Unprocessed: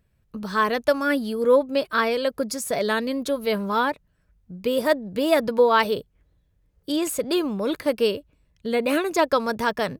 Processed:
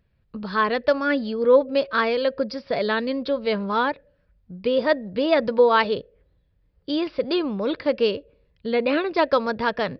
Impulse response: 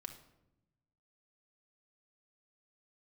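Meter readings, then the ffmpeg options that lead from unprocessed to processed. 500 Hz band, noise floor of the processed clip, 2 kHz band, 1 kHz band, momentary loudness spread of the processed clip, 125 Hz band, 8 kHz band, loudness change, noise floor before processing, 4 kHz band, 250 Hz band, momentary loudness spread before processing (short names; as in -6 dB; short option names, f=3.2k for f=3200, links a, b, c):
+1.0 dB, -65 dBFS, +0.5 dB, 0.0 dB, 11 LU, 0.0 dB, under -25 dB, +0.5 dB, -66 dBFS, 0.0 dB, 0.0 dB, 9 LU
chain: -filter_complex "[0:a]aresample=11025,aresample=44100,asplit=2[a][b];[b]asplit=3[c][d][e];[c]bandpass=f=530:t=q:w=8,volume=0dB[f];[d]bandpass=f=1.84k:t=q:w=8,volume=-6dB[g];[e]bandpass=f=2.48k:t=q:w=8,volume=-9dB[h];[f][g][h]amix=inputs=3:normalize=0[i];[1:a]atrim=start_sample=2205,asetrate=83790,aresample=44100[j];[i][j]afir=irnorm=-1:irlink=0,volume=-0.5dB[k];[a][k]amix=inputs=2:normalize=0"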